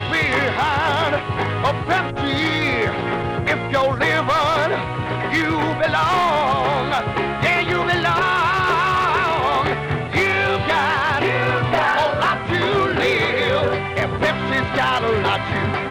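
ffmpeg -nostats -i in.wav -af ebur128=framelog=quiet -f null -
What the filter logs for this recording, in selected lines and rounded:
Integrated loudness:
  I:         -18.7 LUFS
  Threshold: -28.7 LUFS
Loudness range:
  LRA:         1.5 LU
  Threshold: -38.6 LUFS
  LRA low:   -19.4 LUFS
  LRA high:  -17.9 LUFS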